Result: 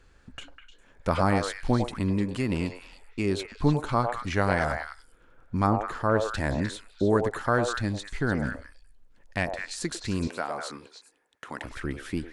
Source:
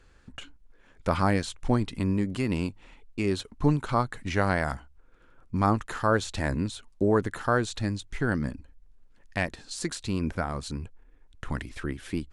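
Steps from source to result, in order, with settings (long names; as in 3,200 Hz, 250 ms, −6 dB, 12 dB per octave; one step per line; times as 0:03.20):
0:05.67–0:06.34: high-shelf EQ 2,200 Hz −8.5 dB
0:10.27–0:11.64: high-pass filter 350 Hz 12 dB per octave
on a send: echo through a band-pass that steps 101 ms, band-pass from 640 Hz, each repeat 1.4 octaves, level −1.5 dB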